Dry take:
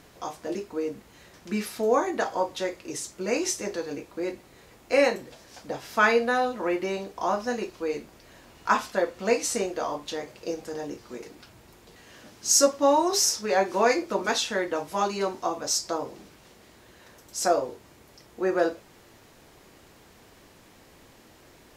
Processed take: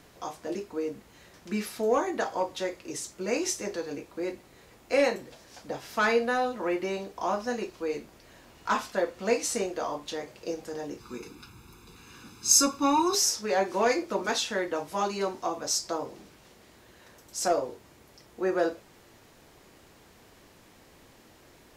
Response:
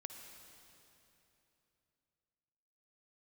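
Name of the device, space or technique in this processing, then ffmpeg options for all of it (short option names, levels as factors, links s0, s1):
one-band saturation: -filter_complex "[0:a]acrossover=split=520|4800[s0][s1][s2];[s1]asoftclip=type=tanh:threshold=0.133[s3];[s0][s3][s2]amix=inputs=3:normalize=0,asettb=1/sr,asplit=3[s4][s5][s6];[s4]atrim=end=11.004[s7];[s5]atrim=start=11:end=13.15,asetpts=PTS-STARTPTS,afade=t=in:d=0.004:c=qsin,afade=t=out:st=2.146:d=0.004:c=qsin,aecho=1:1:0.8:0.93,atrim=end_sample=94815[s8];[s6]atrim=start=13.146[s9];[s7][s8]acrossfade=d=0.004:c1=hsin:c2=qsin[s10];[s10][s9]acrossfade=d=0.004:c1=qsin:c2=hsin,volume=0.794"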